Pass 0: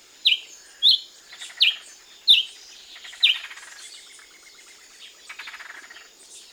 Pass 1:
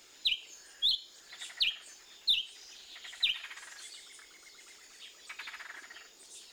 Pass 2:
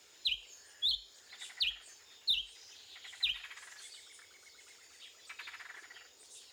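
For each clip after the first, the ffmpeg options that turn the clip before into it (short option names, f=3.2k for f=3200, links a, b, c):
-af "aeval=exprs='0.562*(cos(1*acos(clip(val(0)/0.562,-1,1)))-cos(1*PI/2))+0.00794*(cos(6*acos(clip(val(0)/0.562,-1,1)))-cos(6*PI/2))':c=same,acompressor=threshold=-24dB:ratio=2,volume=-6.5dB"
-af "afreqshift=47,volume=-3.5dB"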